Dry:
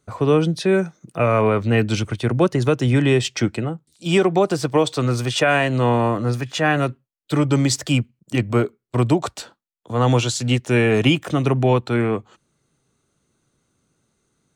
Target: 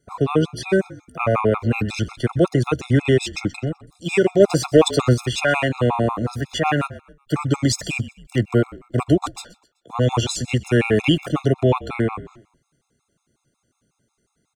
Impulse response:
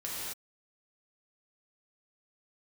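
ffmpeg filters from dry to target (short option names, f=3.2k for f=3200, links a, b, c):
-filter_complex "[0:a]asplit=4[a][b][c][d];[b]adelay=127,afreqshift=-44,volume=-19dB[e];[c]adelay=254,afreqshift=-88,volume=-27.6dB[f];[d]adelay=381,afreqshift=-132,volume=-36.3dB[g];[a][e][f][g]amix=inputs=4:normalize=0,asplit=3[h][i][j];[h]afade=t=out:st=4.39:d=0.02[k];[i]acontrast=46,afade=t=in:st=4.39:d=0.02,afade=t=out:st=5.13:d=0.02[l];[j]afade=t=in:st=5.13:d=0.02[m];[k][l][m]amix=inputs=3:normalize=0,afftfilt=real='re*gt(sin(2*PI*5.5*pts/sr)*(1-2*mod(floor(b*sr/1024/690),2)),0)':imag='im*gt(sin(2*PI*5.5*pts/sr)*(1-2*mod(floor(b*sr/1024/690),2)),0)':win_size=1024:overlap=0.75,volume=1.5dB"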